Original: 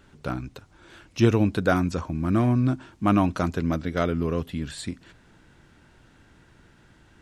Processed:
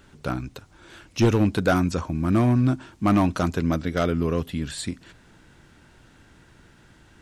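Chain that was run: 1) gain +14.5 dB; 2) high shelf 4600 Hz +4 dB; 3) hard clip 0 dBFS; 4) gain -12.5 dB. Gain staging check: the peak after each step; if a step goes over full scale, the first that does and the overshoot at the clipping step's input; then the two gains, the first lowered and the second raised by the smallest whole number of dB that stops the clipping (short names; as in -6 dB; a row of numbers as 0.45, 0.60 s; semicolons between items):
+9.5, +9.5, 0.0, -12.5 dBFS; step 1, 9.5 dB; step 1 +4.5 dB, step 4 -2.5 dB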